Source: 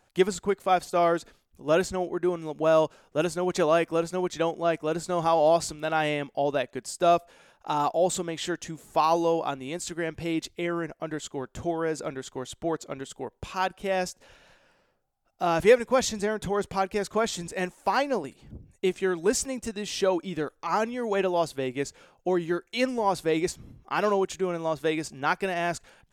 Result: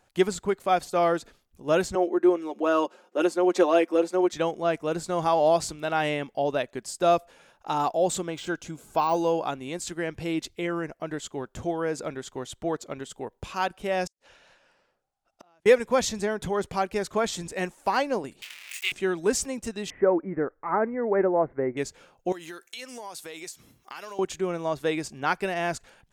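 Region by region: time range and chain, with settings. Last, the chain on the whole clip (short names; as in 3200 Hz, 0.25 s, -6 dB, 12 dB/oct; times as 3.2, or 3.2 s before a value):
1.95–4.32 steep high-pass 230 Hz 48 dB/oct + tilt -1.5 dB/oct + comb 5.6 ms, depth 62%
8.3–9.46 de-esser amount 95% + Butterworth band-stop 1800 Hz, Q 4.9 + bell 1600 Hz +7.5 dB 0.23 oct
14.07–15.66 LPF 9600 Hz + low shelf 260 Hz -9 dB + flipped gate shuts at -33 dBFS, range -37 dB
18.42–18.92 zero-crossing step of -31 dBFS + resonant high-pass 2400 Hz, resonance Q 3 + doubler 26 ms -6 dB
19.9–21.77 Chebyshev low-pass 2100 Hz, order 6 + dynamic EQ 390 Hz, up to +4 dB, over -36 dBFS, Q 1
22.32–24.19 tilt +4 dB/oct + compressor 5:1, threshold -37 dBFS
whole clip: dry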